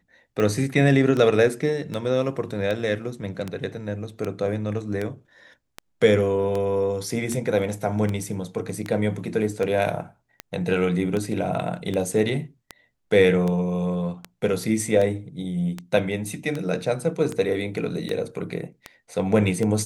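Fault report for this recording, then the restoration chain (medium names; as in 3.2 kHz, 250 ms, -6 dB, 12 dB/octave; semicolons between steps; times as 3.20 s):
tick 78 rpm -15 dBFS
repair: de-click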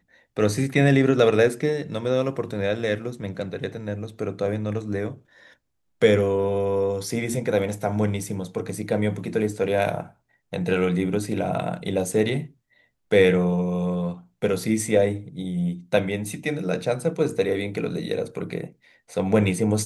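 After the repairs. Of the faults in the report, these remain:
nothing left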